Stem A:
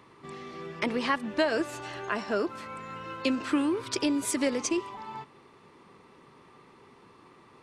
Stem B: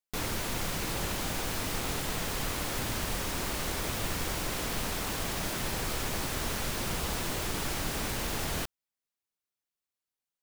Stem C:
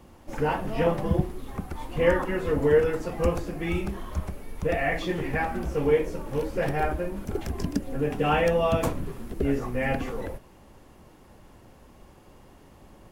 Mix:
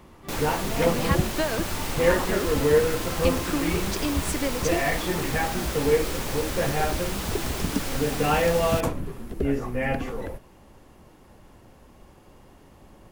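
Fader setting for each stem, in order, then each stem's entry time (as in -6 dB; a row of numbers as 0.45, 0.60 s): -1.5, +1.5, +0.5 dB; 0.00, 0.15, 0.00 s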